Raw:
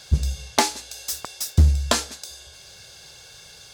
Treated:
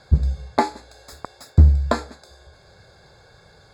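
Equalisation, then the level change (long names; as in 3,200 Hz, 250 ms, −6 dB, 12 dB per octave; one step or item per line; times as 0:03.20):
moving average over 15 samples
+3.5 dB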